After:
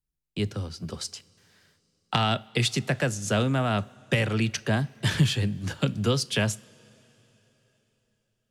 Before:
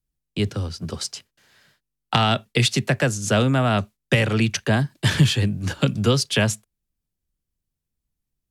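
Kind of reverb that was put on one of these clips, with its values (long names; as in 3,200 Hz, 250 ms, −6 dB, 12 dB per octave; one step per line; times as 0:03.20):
coupled-rooms reverb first 0.29 s, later 3.9 s, from −18 dB, DRR 17.5 dB
level −5.5 dB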